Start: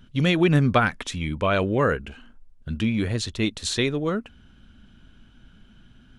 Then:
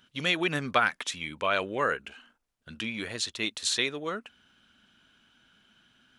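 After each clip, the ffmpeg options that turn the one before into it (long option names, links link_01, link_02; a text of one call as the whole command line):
ffmpeg -i in.wav -af "highpass=frequency=1100:poles=1" out.wav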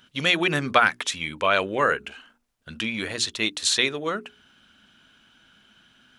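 ffmpeg -i in.wav -af "bandreject=frequency=60:width_type=h:width=6,bandreject=frequency=120:width_type=h:width=6,bandreject=frequency=180:width_type=h:width=6,bandreject=frequency=240:width_type=h:width=6,bandreject=frequency=300:width_type=h:width=6,bandreject=frequency=360:width_type=h:width=6,bandreject=frequency=420:width_type=h:width=6,volume=6dB" out.wav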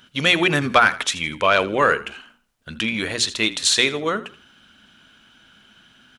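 ffmpeg -i in.wav -filter_complex "[0:a]acontrast=45,asplit=4[link_01][link_02][link_03][link_04];[link_02]adelay=81,afreqshift=-34,volume=-17dB[link_05];[link_03]adelay=162,afreqshift=-68,volume=-27.2dB[link_06];[link_04]adelay=243,afreqshift=-102,volume=-37.3dB[link_07];[link_01][link_05][link_06][link_07]amix=inputs=4:normalize=0,volume=-1dB" out.wav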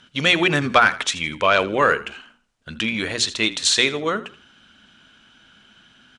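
ffmpeg -i in.wav -af "lowpass=frequency=9100:width=0.5412,lowpass=frequency=9100:width=1.3066" out.wav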